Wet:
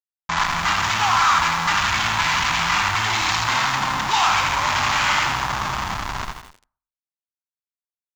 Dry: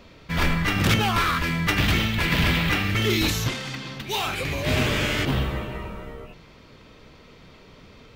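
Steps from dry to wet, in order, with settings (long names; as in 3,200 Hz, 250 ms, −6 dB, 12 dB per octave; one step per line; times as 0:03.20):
variable-slope delta modulation 64 kbit/s
in parallel at +1 dB: downward compressor 10 to 1, threshold −32 dBFS, peak gain reduction 16 dB
on the sum: comparator with hysteresis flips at −28.5 dBFS
single-tap delay 199 ms −17 dB
on a send at −20 dB: convolution reverb RT60 0.50 s, pre-delay 53 ms
on the sum: downsampling to 16,000 Hz
low shelf with overshoot 670 Hz −12 dB, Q 3
feedback echo at a low word length 83 ms, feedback 55%, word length 7 bits, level −7 dB
level +3.5 dB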